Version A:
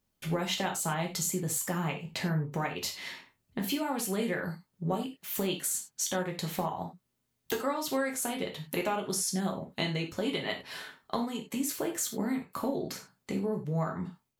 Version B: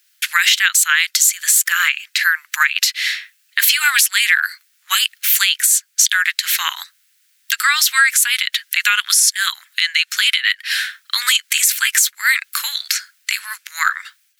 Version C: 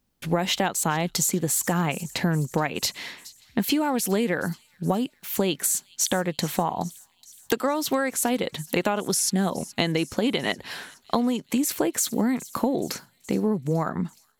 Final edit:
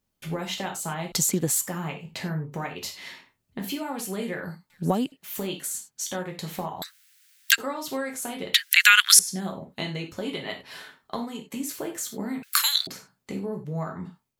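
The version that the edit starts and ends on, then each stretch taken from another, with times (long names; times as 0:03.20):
A
0:01.12–0:01.61: punch in from C
0:04.70–0:05.12: punch in from C
0:06.82–0:07.58: punch in from B
0:08.54–0:09.19: punch in from B
0:12.43–0:12.87: punch in from B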